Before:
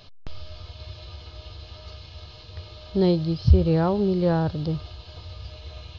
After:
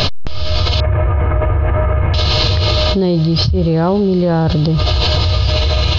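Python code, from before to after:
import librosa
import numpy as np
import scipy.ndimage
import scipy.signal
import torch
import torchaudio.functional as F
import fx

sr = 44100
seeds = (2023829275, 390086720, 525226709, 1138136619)

y = fx.steep_lowpass(x, sr, hz=2100.0, slope=48, at=(0.8, 2.14))
y = fx.env_flatten(y, sr, amount_pct=100)
y = y * librosa.db_to_amplitude(-3.5)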